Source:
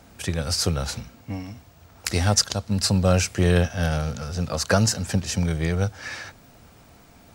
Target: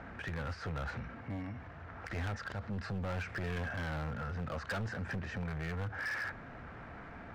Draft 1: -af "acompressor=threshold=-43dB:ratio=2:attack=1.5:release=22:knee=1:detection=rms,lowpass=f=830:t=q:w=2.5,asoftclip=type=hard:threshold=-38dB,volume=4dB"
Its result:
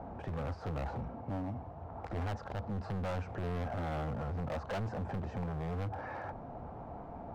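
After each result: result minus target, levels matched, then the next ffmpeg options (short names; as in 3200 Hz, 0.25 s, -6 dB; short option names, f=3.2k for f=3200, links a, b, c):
2000 Hz band -10.0 dB; compressor: peak gain reduction -3.5 dB
-af "acompressor=threshold=-43dB:ratio=2:attack=1.5:release=22:knee=1:detection=rms,lowpass=f=1.7k:t=q:w=2.5,asoftclip=type=hard:threshold=-38dB,volume=4dB"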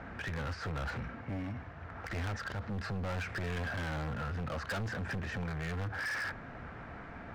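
compressor: peak gain reduction -3.5 dB
-af "acompressor=threshold=-50.5dB:ratio=2:attack=1.5:release=22:knee=1:detection=rms,lowpass=f=1.7k:t=q:w=2.5,asoftclip=type=hard:threshold=-38dB,volume=4dB"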